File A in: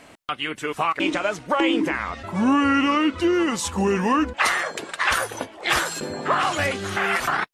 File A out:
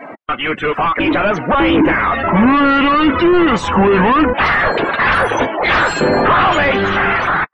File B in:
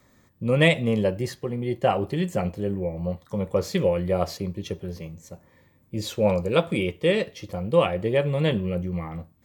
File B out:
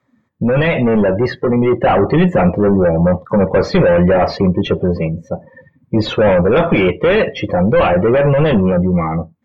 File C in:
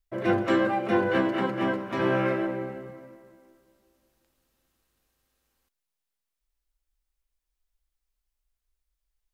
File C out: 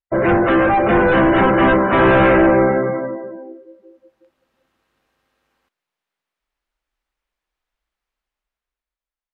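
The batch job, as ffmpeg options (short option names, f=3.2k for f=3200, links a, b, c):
-filter_complex "[0:a]asplit=2[a][b];[b]highpass=f=720:p=1,volume=33dB,asoftclip=type=tanh:threshold=-4.5dB[c];[a][c]amix=inputs=2:normalize=0,lowpass=f=1.9k:p=1,volume=-6dB,bass=f=250:g=6,treble=f=4k:g=-6,dynaudnorm=f=290:g=9:m=16dB,afftdn=nr=26:nf=-24,volume=-2.5dB"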